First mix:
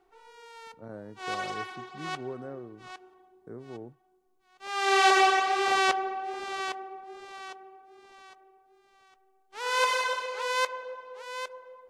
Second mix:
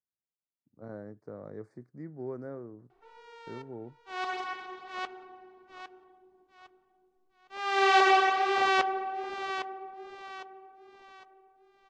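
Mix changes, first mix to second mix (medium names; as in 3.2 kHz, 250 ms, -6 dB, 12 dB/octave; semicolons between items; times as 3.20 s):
background: entry +2.90 s; master: add distance through air 120 m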